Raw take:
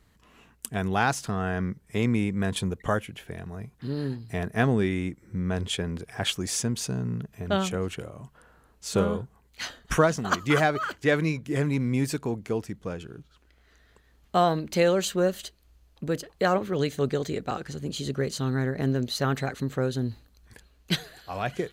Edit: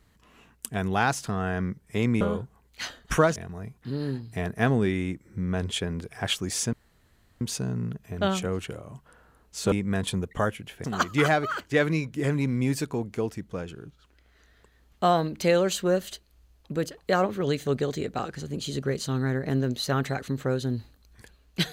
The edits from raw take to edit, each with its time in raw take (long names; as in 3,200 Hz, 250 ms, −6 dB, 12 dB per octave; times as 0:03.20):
0:02.21–0:03.33: swap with 0:09.01–0:10.16
0:06.70: splice in room tone 0.68 s